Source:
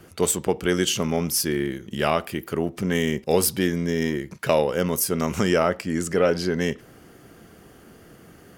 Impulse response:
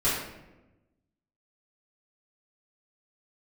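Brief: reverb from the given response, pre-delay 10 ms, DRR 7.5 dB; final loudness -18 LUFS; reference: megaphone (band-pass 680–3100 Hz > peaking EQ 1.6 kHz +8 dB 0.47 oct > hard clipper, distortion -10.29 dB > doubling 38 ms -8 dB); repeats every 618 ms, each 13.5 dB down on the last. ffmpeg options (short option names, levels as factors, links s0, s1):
-filter_complex "[0:a]aecho=1:1:618|1236:0.211|0.0444,asplit=2[s0][s1];[1:a]atrim=start_sample=2205,adelay=10[s2];[s1][s2]afir=irnorm=-1:irlink=0,volume=0.106[s3];[s0][s3]amix=inputs=2:normalize=0,highpass=680,lowpass=3100,equalizer=f=1600:t=o:w=0.47:g=8,asoftclip=type=hard:threshold=0.0891,asplit=2[s4][s5];[s5]adelay=38,volume=0.398[s6];[s4][s6]amix=inputs=2:normalize=0,volume=3.35"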